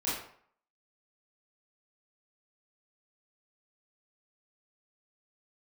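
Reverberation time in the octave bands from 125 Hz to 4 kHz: 0.55 s, 0.50 s, 0.55 s, 0.60 s, 0.50 s, 0.40 s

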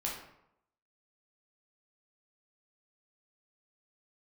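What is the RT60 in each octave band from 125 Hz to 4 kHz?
0.80 s, 0.80 s, 0.80 s, 0.80 s, 0.65 s, 0.50 s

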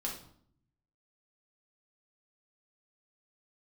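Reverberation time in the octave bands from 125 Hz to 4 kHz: 1.2 s, 0.95 s, 0.65 s, 0.60 s, 0.50 s, 0.45 s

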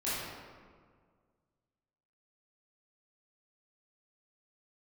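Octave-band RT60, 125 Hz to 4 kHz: 2.2 s, 2.0 s, 1.9 s, 1.7 s, 1.4 s, 0.95 s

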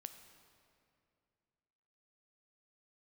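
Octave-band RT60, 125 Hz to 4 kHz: 2.9 s, 2.8 s, 2.6 s, 2.3 s, 2.2 s, 1.8 s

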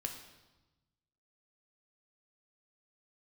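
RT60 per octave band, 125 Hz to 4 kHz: 1.7 s, 1.4 s, 1.1 s, 1.1 s, 0.95 s, 1.0 s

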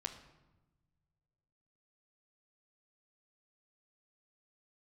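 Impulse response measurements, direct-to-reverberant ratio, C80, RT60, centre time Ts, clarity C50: 3.0 dB, 12.0 dB, 1.1 s, 16 ms, 10.0 dB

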